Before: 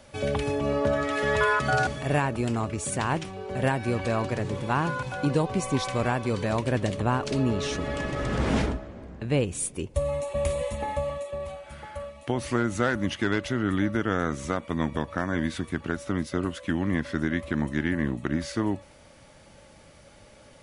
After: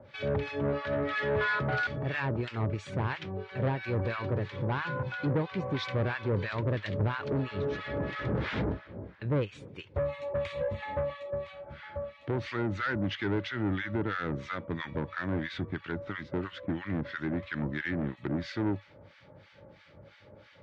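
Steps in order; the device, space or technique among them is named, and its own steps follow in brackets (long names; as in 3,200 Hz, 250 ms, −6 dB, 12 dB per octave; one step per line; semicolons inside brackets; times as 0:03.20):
guitar amplifier with harmonic tremolo (two-band tremolo in antiphase 3 Hz, depth 100%, crossover 1,100 Hz; soft clipping −27 dBFS, distortion −10 dB; loudspeaker in its box 95–3,700 Hz, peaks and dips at 100 Hz +6 dB, 240 Hz −6 dB, 720 Hz −7 dB, 1,100 Hz −4 dB, 2,800 Hz −5 dB)
level +4.5 dB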